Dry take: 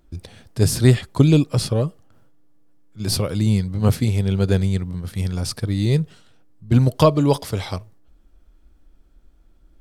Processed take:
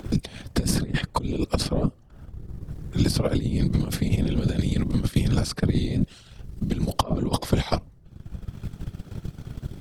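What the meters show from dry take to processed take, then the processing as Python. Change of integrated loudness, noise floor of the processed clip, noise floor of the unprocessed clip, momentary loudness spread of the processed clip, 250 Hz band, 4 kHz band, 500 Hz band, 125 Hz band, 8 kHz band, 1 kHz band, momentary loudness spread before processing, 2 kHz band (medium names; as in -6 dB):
-6.0 dB, -51 dBFS, -54 dBFS, 15 LU, -4.0 dB, -2.5 dB, -7.5 dB, -6.5 dB, -4.5 dB, -2.5 dB, 14 LU, -2.5 dB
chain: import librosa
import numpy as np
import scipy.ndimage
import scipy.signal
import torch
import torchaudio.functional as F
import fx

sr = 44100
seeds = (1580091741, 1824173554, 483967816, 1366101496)

y = fx.over_compress(x, sr, threshold_db=-23.0, ratio=-1.0)
y = fx.whisperise(y, sr, seeds[0])
y = fx.high_shelf(y, sr, hz=6700.0, db=-6.0)
y = fx.transient(y, sr, attack_db=6, sustain_db=-6)
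y = fx.band_squash(y, sr, depth_pct=70)
y = y * 10.0 ** (-1.5 / 20.0)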